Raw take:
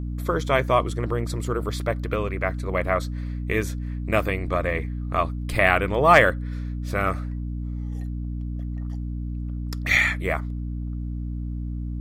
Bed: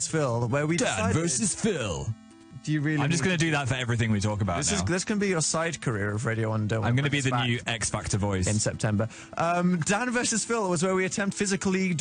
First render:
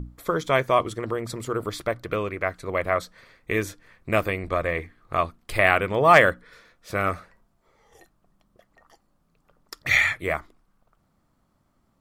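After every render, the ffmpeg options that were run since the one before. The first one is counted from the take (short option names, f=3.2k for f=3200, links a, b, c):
-af "bandreject=f=60:t=h:w=6,bandreject=f=120:t=h:w=6,bandreject=f=180:t=h:w=6,bandreject=f=240:t=h:w=6,bandreject=f=300:t=h:w=6"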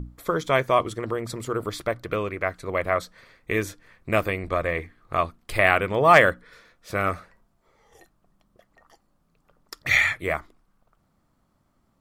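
-af anull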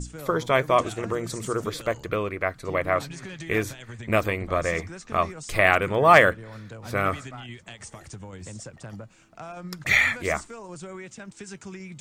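-filter_complex "[1:a]volume=-14dB[a];[0:a][a]amix=inputs=2:normalize=0"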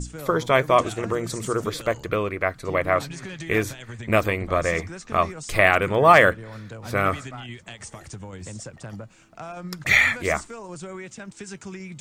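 -af "volume=2.5dB,alimiter=limit=-3dB:level=0:latency=1"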